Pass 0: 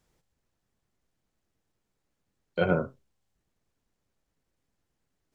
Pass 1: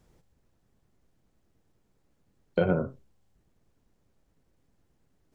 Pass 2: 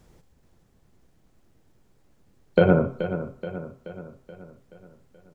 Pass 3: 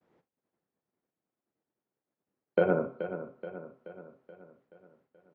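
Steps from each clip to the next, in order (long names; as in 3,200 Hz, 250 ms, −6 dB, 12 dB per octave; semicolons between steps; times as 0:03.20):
tilt shelving filter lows +4.5 dB, about 860 Hz; downward compressor 6 to 1, threshold −28 dBFS, peak gain reduction 11.5 dB; level +6.5 dB
repeating echo 428 ms, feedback 53%, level −11 dB; on a send at −16 dB: convolution reverb RT60 0.45 s, pre-delay 77 ms; on the sum: level +7.5 dB
band-pass filter 260–2,200 Hz; downward expander −60 dBFS; level −6 dB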